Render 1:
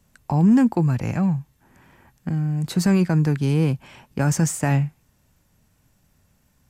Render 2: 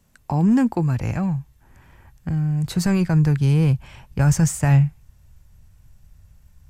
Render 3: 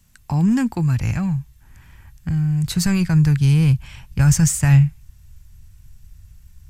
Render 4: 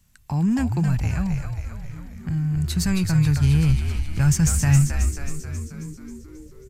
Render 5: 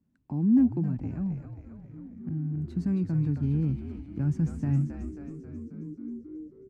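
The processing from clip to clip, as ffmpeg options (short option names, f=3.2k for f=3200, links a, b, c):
-af "asubboost=boost=10.5:cutoff=83"
-af "equalizer=f=510:w=0.52:g=-13.5,volume=6.5dB"
-filter_complex "[0:a]asplit=9[a][b][c][d][e][f][g][h][i];[b]adelay=269,afreqshift=-75,volume=-5.5dB[j];[c]adelay=538,afreqshift=-150,volume=-10.1dB[k];[d]adelay=807,afreqshift=-225,volume=-14.7dB[l];[e]adelay=1076,afreqshift=-300,volume=-19.2dB[m];[f]adelay=1345,afreqshift=-375,volume=-23.8dB[n];[g]adelay=1614,afreqshift=-450,volume=-28.4dB[o];[h]adelay=1883,afreqshift=-525,volume=-33dB[p];[i]adelay=2152,afreqshift=-600,volume=-37.6dB[q];[a][j][k][l][m][n][o][p][q]amix=inputs=9:normalize=0,volume=-4dB"
-af "bandpass=f=280:t=q:w=3.3:csg=0,volume=4.5dB"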